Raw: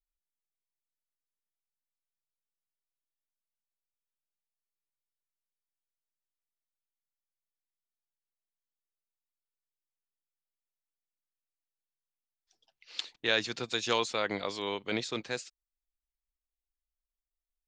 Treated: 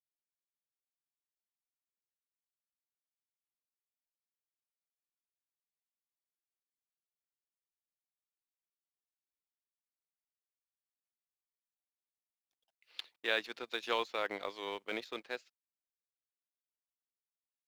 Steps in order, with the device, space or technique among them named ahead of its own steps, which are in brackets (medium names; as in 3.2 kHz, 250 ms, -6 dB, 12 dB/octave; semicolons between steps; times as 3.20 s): phone line with mismatched companding (band-pass 360–3300 Hz; companding laws mixed up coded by A); trim -2.5 dB